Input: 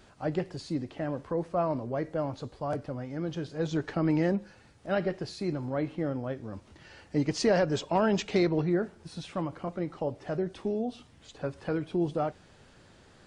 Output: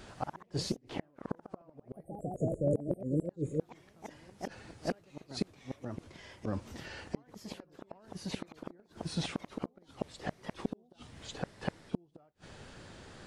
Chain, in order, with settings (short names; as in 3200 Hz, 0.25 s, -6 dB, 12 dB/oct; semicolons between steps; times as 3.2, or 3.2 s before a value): spectral delete 2.08–3.61, 590–6600 Hz; flipped gate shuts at -25 dBFS, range -40 dB; echoes that change speed 86 ms, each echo +2 st, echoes 3, each echo -6 dB; gain +5.5 dB